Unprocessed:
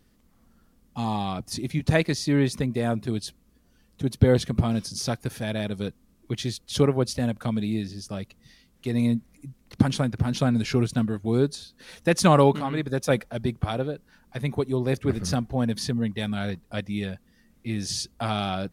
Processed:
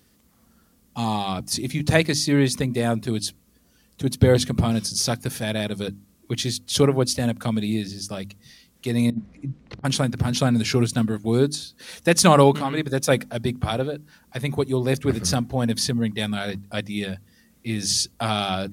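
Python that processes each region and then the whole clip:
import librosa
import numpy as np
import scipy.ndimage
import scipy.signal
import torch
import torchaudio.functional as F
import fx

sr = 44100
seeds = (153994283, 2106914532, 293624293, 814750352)

y = fx.chain(x, sr, fx.over_compress(threshold_db=-30.0, ratio=-0.5),
    fx.spacing_loss(db_at_10k=29), at=(9.1, 9.85))
y = scipy.signal.sosfilt(scipy.signal.butter(2, 57.0, 'highpass', fs=sr, output='sos'), y)
y = fx.high_shelf(y, sr, hz=3700.0, db=7.5)
y = fx.hum_notches(y, sr, base_hz=50, count=6)
y = y * librosa.db_to_amplitude(3.0)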